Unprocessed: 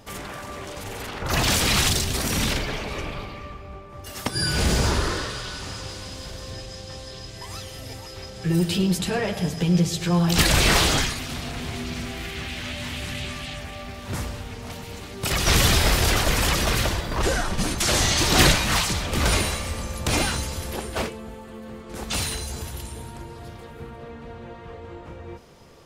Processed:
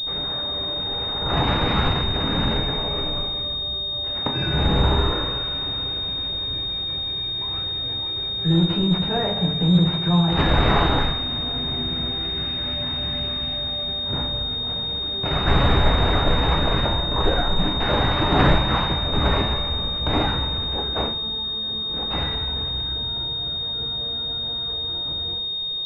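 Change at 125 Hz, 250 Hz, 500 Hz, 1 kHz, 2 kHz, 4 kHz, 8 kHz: +2.5 dB, +2.5 dB, +2.0 dB, +3.5 dB, -3.0 dB, +6.5 dB, under -30 dB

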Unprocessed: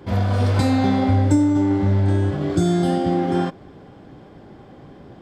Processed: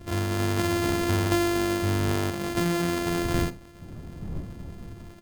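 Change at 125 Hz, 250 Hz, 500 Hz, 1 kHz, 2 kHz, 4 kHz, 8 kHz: -9.0, -8.0, -4.0, -5.5, +2.0, +1.5, +4.0 dB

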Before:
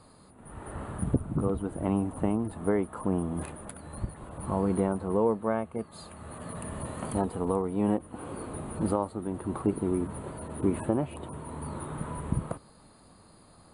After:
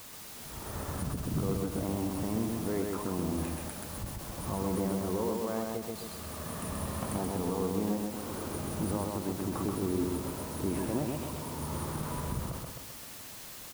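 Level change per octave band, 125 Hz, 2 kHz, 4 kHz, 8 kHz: -2.0, +1.0, +10.0, +4.0 dB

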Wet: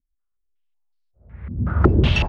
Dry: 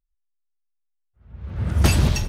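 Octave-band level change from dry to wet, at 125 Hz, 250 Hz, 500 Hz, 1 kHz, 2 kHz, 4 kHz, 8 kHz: +1.0 dB, +4.0 dB, +6.5 dB, +4.5 dB, +3.5 dB, +1.0 dB, under -15 dB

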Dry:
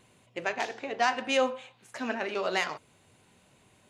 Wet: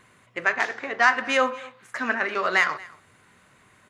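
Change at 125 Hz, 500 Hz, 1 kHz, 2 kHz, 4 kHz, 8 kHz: n/a, +2.0 dB, +6.0 dB, +11.0 dB, +2.0 dB, +2.0 dB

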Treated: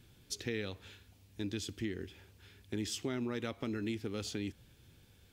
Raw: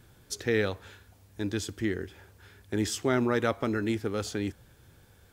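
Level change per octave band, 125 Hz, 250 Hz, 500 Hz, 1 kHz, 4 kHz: -8.0, -8.0, -11.5, -14.5, -4.0 dB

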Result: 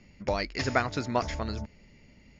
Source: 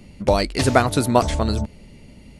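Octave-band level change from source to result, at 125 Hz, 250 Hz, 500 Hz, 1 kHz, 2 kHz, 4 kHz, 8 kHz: -12.5, -12.5, -11.5, -10.0, -6.0, -10.0, -15.0 dB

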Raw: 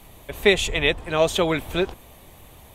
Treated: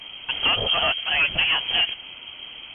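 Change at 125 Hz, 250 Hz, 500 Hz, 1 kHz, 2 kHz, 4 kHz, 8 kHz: -8.5 dB, -14.5 dB, -12.5 dB, +0.5 dB, +2.5 dB, +8.0 dB, under -40 dB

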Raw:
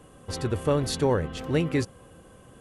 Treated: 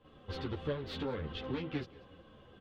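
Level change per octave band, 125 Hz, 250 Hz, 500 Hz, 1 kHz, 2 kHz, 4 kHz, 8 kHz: -13.0 dB, -11.5 dB, -13.5 dB, -12.5 dB, -10.0 dB, -9.0 dB, under -25 dB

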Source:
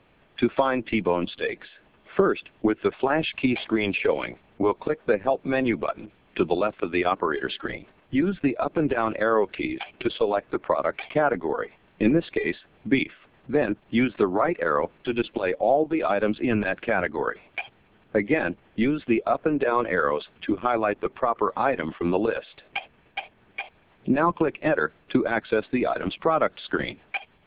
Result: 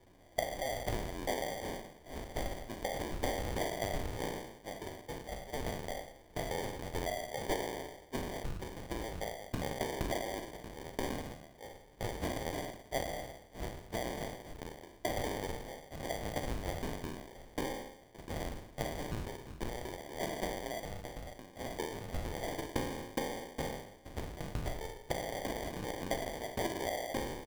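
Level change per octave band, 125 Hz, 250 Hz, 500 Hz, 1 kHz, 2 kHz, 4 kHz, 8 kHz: -7.0 dB, -17.5 dB, -15.0 dB, -13.5 dB, -15.0 dB, -7.0 dB, n/a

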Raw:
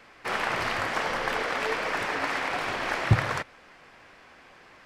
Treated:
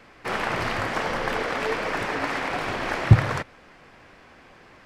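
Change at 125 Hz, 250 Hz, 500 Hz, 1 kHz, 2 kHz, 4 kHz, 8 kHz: +7.5, +6.0, +3.5, +1.5, +0.5, 0.0, 0.0 dB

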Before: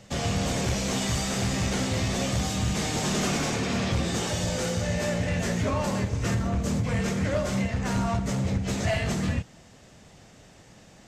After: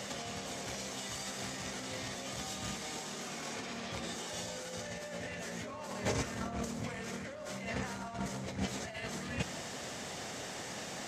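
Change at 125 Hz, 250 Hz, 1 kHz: -17.5, -14.0, -9.5 dB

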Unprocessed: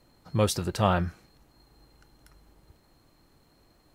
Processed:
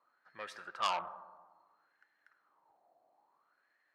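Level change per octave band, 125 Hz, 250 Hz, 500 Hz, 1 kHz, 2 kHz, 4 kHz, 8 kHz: under -35 dB, -31.0 dB, -18.5 dB, -6.0 dB, -7.0 dB, -6.5 dB, -18.0 dB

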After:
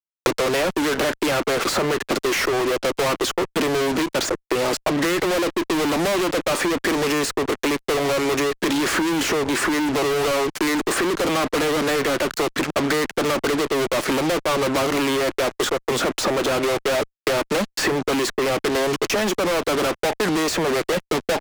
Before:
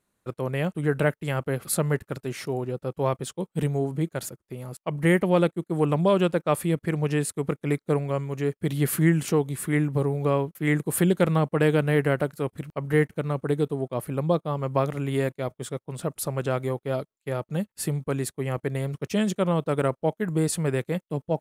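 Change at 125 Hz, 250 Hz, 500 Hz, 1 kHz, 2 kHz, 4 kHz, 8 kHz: -8.5, +3.5, +5.0, +8.5, +9.5, +16.0, +8.0 dB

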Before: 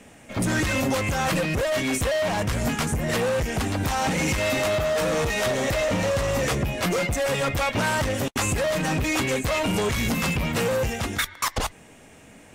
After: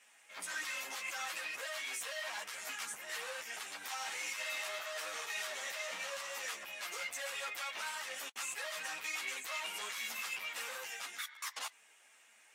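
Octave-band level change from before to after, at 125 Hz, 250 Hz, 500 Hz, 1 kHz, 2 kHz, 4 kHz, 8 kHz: under -40 dB, -38.5 dB, -25.0 dB, -17.0 dB, -12.0 dB, -11.0 dB, -11.5 dB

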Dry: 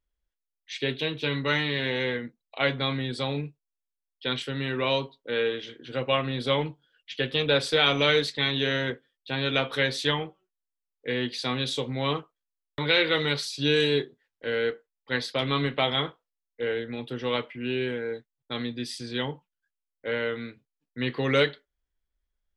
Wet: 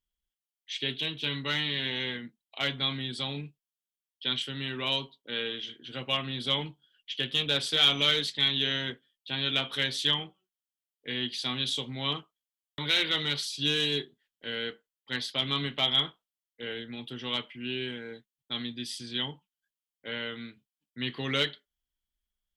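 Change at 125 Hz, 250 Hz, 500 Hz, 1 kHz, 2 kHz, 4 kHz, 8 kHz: -6.5, -6.0, -11.0, -7.0, -5.0, +2.0, +0.5 dB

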